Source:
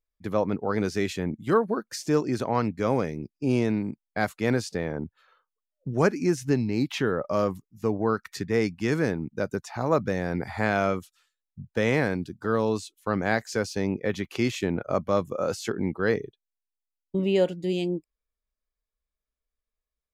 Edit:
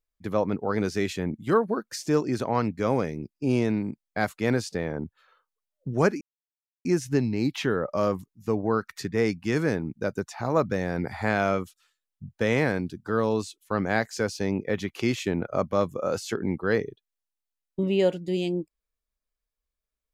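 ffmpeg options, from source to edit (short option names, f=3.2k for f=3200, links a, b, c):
-filter_complex "[0:a]asplit=2[a][b];[a]atrim=end=6.21,asetpts=PTS-STARTPTS,afade=t=out:st=6.206:d=0.004:c=hsin,apad=pad_dur=0.64[c];[b]atrim=start=6.21,asetpts=PTS-STARTPTS,afade=t=in:d=0.004:c=hsin[d];[c][d]concat=n=2:v=0:a=1"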